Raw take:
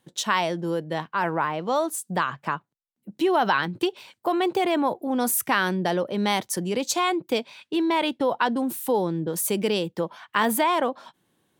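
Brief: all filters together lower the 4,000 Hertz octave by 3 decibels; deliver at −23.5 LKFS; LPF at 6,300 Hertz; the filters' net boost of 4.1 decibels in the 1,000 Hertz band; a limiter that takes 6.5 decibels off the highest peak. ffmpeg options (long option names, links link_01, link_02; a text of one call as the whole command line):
ffmpeg -i in.wav -af "lowpass=6300,equalizer=frequency=1000:width_type=o:gain=5,equalizer=frequency=4000:width_type=o:gain=-4,volume=1.5dB,alimiter=limit=-11.5dB:level=0:latency=1" out.wav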